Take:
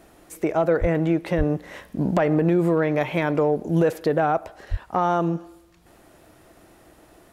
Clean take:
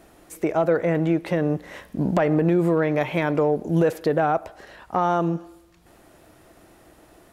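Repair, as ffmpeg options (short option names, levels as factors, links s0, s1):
-filter_complex "[0:a]asplit=3[s0][s1][s2];[s0]afade=t=out:st=0.8:d=0.02[s3];[s1]highpass=f=140:w=0.5412,highpass=f=140:w=1.3066,afade=t=in:st=0.8:d=0.02,afade=t=out:st=0.92:d=0.02[s4];[s2]afade=t=in:st=0.92:d=0.02[s5];[s3][s4][s5]amix=inputs=3:normalize=0,asplit=3[s6][s7][s8];[s6]afade=t=out:st=1.37:d=0.02[s9];[s7]highpass=f=140:w=0.5412,highpass=f=140:w=1.3066,afade=t=in:st=1.37:d=0.02,afade=t=out:st=1.49:d=0.02[s10];[s8]afade=t=in:st=1.49:d=0.02[s11];[s9][s10][s11]amix=inputs=3:normalize=0,asplit=3[s12][s13][s14];[s12]afade=t=out:st=4.7:d=0.02[s15];[s13]highpass=f=140:w=0.5412,highpass=f=140:w=1.3066,afade=t=in:st=4.7:d=0.02,afade=t=out:st=4.82:d=0.02[s16];[s14]afade=t=in:st=4.82:d=0.02[s17];[s15][s16][s17]amix=inputs=3:normalize=0"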